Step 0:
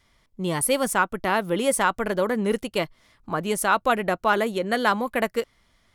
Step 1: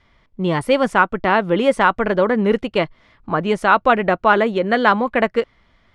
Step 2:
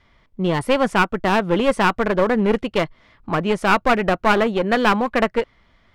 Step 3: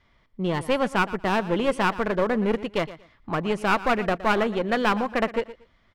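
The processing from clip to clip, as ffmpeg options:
-af "lowpass=3k,volume=7dB"
-af "aeval=exprs='clip(val(0),-1,0.112)':c=same"
-af "aecho=1:1:117|234:0.158|0.0333,volume=-5.5dB"

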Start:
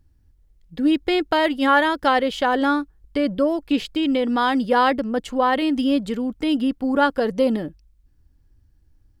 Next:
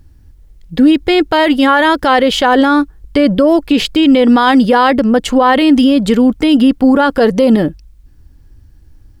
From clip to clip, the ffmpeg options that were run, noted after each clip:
-af "alimiter=level_in=16.5dB:limit=-1dB:release=50:level=0:latency=1,volume=-1dB"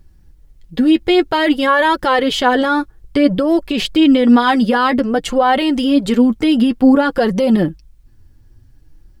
-af "flanger=delay=5.2:depth=3.9:regen=24:speed=0.54:shape=sinusoidal"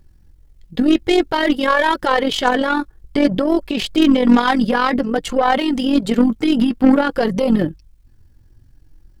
-af "aeval=exprs='0.794*(cos(1*acos(clip(val(0)/0.794,-1,1)))-cos(1*PI/2))+0.0708*(cos(6*acos(clip(val(0)/0.794,-1,1)))-cos(6*PI/2))+0.0316*(cos(8*acos(clip(val(0)/0.794,-1,1)))-cos(8*PI/2))':c=same,tremolo=f=44:d=0.571"

